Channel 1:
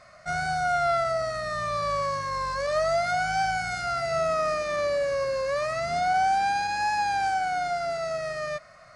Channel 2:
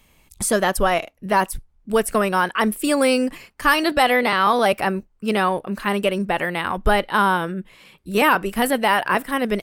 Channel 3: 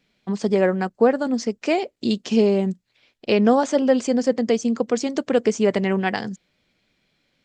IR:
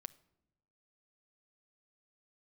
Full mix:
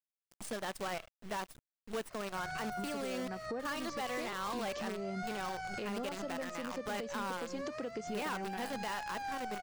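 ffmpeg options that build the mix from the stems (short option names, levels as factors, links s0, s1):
-filter_complex "[0:a]adelay=2100,volume=0.708[s0];[1:a]highpass=120,equalizer=f=10000:t=o:w=0.44:g=-4.5,acrusher=bits=4:dc=4:mix=0:aa=0.000001,volume=0.251[s1];[2:a]adelay=2500,volume=0.75[s2];[s0][s2]amix=inputs=2:normalize=0,acompressor=threshold=0.0224:ratio=4,volume=1[s3];[s1][s3]amix=inputs=2:normalize=0,asoftclip=type=tanh:threshold=0.0944,equalizer=f=13000:w=1.9:g=-8,alimiter=level_in=2.11:limit=0.0631:level=0:latency=1:release=274,volume=0.473"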